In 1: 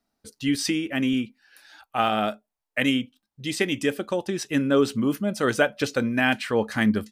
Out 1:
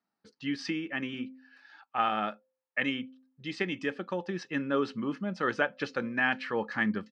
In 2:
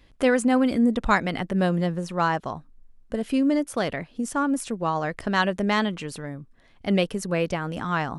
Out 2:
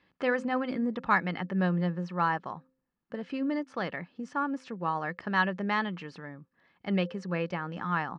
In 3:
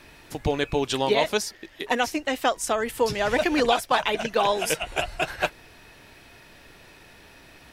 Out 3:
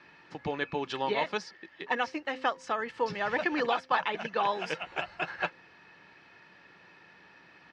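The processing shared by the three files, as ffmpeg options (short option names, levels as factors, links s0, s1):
-af "highpass=170,equalizer=f=180:t=q:w=4:g=10,equalizer=f=430:t=q:w=4:g=-5,equalizer=f=1100:t=q:w=4:g=6,equalizer=f=1700:t=q:w=4:g=5,equalizer=f=3600:t=q:w=4:g=-5,lowpass=f=4700:w=0.5412,lowpass=f=4700:w=1.3066,aecho=1:1:2.3:0.34,bandreject=f=260.6:t=h:w=4,bandreject=f=521.2:t=h:w=4,volume=0.422"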